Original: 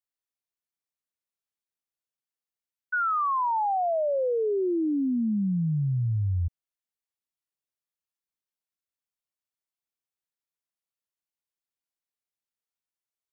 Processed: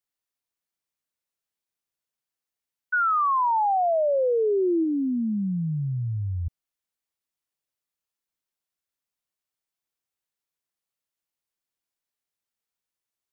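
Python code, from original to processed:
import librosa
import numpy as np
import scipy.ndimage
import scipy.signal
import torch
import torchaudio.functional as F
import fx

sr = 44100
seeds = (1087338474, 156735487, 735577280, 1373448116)

y = fx.low_shelf(x, sr, hz=220.0, db=-7.0, at=(4.83, 6.46), fade=0.02)
y = y * librosa.db_to_amplitude(3.5)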